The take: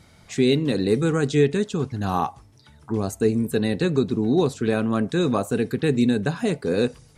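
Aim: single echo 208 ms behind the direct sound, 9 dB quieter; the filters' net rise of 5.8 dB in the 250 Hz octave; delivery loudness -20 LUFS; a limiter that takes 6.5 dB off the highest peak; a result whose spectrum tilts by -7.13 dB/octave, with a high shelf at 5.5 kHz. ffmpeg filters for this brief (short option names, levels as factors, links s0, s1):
-af "equalizer=f=250:t=o:g=7,highshelf=f=5500:g=-6,alimiter=limit=0.299:level=0:latency=1,aecho=1:1:208:0.355"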